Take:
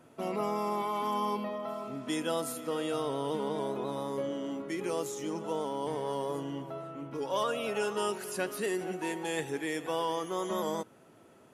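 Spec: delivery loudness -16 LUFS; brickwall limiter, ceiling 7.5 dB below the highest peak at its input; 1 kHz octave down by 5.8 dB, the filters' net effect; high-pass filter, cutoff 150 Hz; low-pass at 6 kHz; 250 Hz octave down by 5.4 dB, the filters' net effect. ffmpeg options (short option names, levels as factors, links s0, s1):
-af "highpass=150,lowpass=6000,equalizer=f=250:t=o:g=-6.5,equalizer=f=1000:t=o:g=-6.5,volume=14.1,alimiter=limit=0.531:level=0:latency=1"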